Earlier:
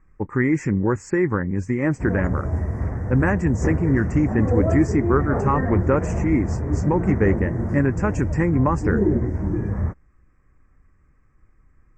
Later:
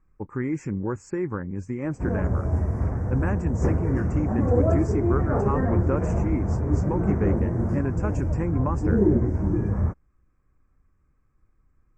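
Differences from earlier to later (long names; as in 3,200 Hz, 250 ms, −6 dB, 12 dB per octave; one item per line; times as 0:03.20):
speech −7.5 dB
master: add parametric band 1,900 Hz −9 dB 0.29 octaves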